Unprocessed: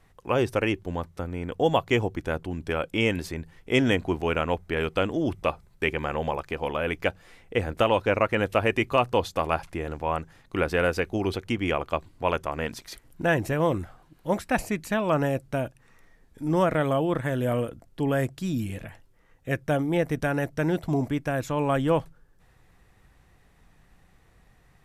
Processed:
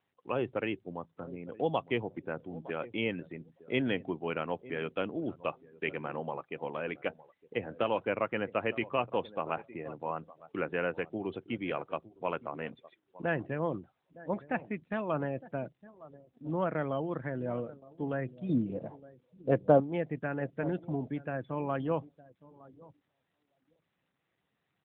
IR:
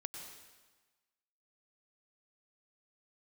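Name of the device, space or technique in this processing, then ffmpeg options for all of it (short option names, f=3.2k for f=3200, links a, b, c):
mobile call with aggressive noise cancelling: -filter_complex "[0:a]asettb=1/sr,asplit=3[a][b][c];[a]atrim=end=18.494[d];[b]atrim=start=18.49:end=19.8,asetpts=PTS-STARTPTS,afade=t=in:d=0.004:c=qsin,afade=t=out:st=1.306:d=0.004:c=qsin,equalizer=f=125:t=o:w=1:g=5,equalizer=f=250:t=o:w=1:g=6,equalizer=f=500:t=o:w=1:g=11,equalizer=f=1k:t=o:w=1:g=11,equalizer=f=2k:t=o:w=1:g=-7,equalizer=f=4k:t=o:w=1:g=5[e];[c]atrim=start=19.796[f];[d][e]acrossfade=d=0.004:c1=hsin:c2=qsin[g];[g][f]acrossfade=d=0.004:c1=qsin:c2=hsin,highpass=f=120:w=0.5412,highpass=f=120:w=1.3066,asplit=2[h][i];[i]adelay=911,lowpass=f=2.2k:p=1,volume=-17dB,asplit=2[j][k];[k]adelay=911,lowpass=f=2.2k:p=1,volume=0.19[l];[h][j][l]amix=inputs=3:normalize=0,afftdn=nr=19:nf=-39,volume=-8dB" -ar 8000 -c:a libopencore_amrnb -b:a 12200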